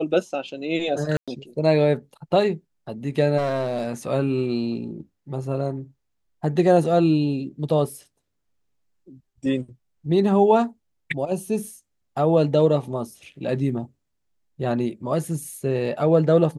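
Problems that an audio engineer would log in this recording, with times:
1.17–1.28 s: dropout 106 ms
3.37–3.88 s: clipped -20 dBFS

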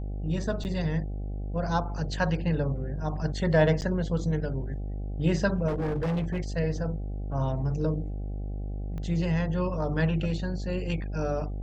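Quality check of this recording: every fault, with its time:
buzz 50 Hz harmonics 16 -33 dBFS
0.64–0.65 s: dropout 9.4 ms
3.81–3.82 s: dropout 9.6 ms
5.67–6.40 s: clipped -25 dBFS
8.98 s: pop -27 dBFS

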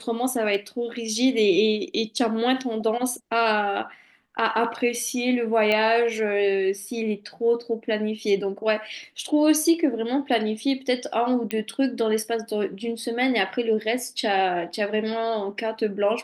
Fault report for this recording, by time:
5.72 s: pop -12 dBFS
11.51 s: pop -12 dBFS

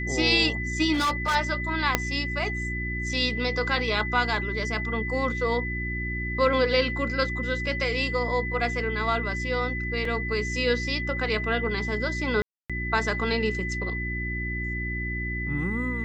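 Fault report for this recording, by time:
hum 60 Hz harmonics 6 -32 dBFS
whine 2 kHz -31 dBFS
0.93–1.36 s: clipped -21 dBFS
1.95 s: pop -4 dBFS
10.05 s: dropout 2.8 ms
12.42–12.70 s: dropout 276 ms

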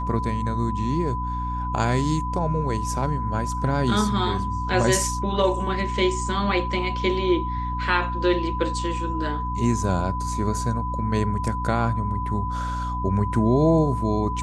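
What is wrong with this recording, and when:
hum 60 Hz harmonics 5 -29 dBFS
whine 1 kHz -28 dBFS

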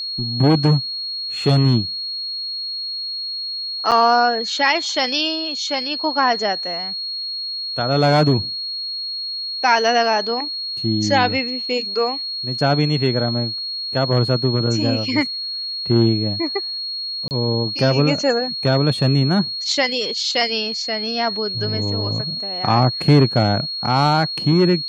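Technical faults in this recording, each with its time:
whine 4.3 kHz -24 dBFS
3.91–3.92 s: dropout 7.2 ms
17.28–17.31 s: dropout 29 ms

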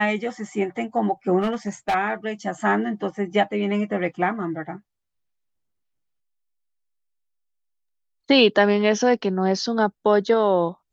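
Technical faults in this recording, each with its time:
1.40–1.95 s: clipped -18.5 dBFS

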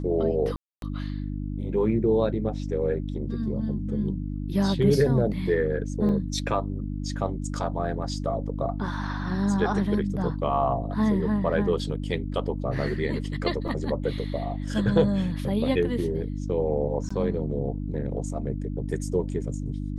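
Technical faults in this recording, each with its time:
hum 50 Hz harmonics 6 -31 dBFS
0.56–0.82 s: dropout 262 ms
6.09 s: dropout 2.6 ms
13.68 s: dropout 4.8 ms
17.09–17.11 s: dropout 15 ms

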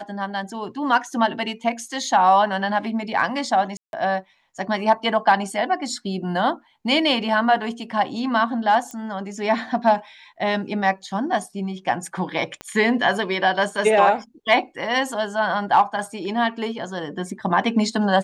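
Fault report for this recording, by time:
3.77–3.93 s: dropout 161 ms
8.91 s: pop -21 dBFS
12.61 s: pop -18 dBFS

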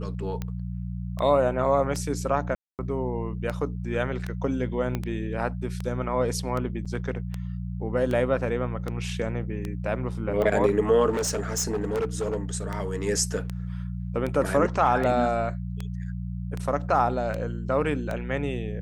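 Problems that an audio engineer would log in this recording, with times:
hum 60 Hz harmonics 3 -32 dBFS
tick 78 rpm -18 dBFS
2.55–2.79 s: dropout 238 ms
4.95 s: pop -15 dBFS
6.85–6.86 s: dropout 6.2 ms
11.09–12.37 s: clipped -23 dBFS

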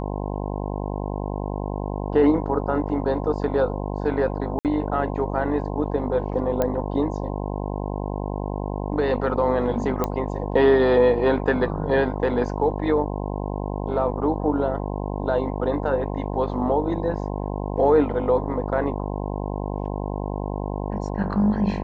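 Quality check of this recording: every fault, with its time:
buzz 50 Hz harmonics 21 -28 dBFS
4.59–4.65 s: dropout 58 ms
6.62 s: pop -10 dBFS
10.04 s: pop -10 dBFS

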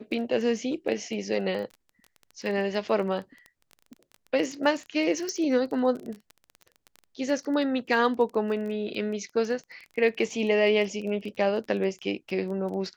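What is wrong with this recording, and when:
crackle 16 per s -33 dBFS
5.29 s: pop -19 dBFS

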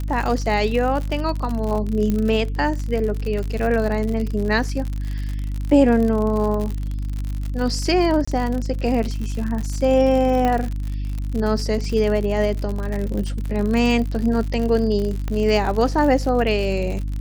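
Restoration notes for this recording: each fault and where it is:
crackle 71 per s -25 dBFS
hum 50 Hz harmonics 6 -25 dBFS
2.10 s: pop -11 dBFS
8.25–8.28 s: dropout 25 ms
10.45 s: pop -10 dBFS
15.28 s: pop -14 dBFS

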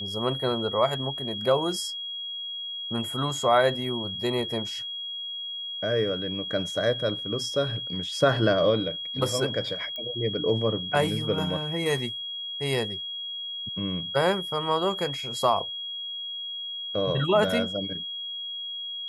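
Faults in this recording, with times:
whine 3.3 kHz -32 dBFS
9.96 s: pop -23 dBFS

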